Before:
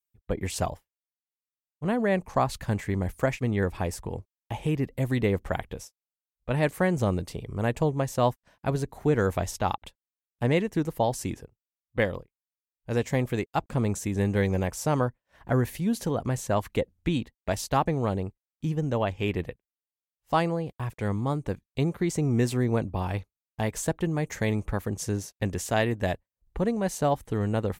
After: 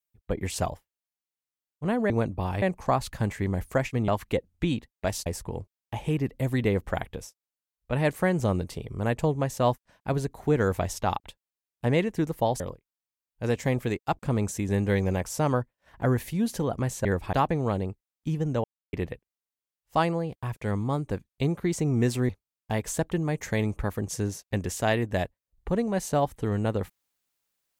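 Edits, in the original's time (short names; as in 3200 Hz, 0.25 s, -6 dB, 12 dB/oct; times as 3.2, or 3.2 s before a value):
3.56–3.84 swap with 16.52–17.7
11.18–12.07 cut
19.01–19.3 mute
22.66–23.18 move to 2.1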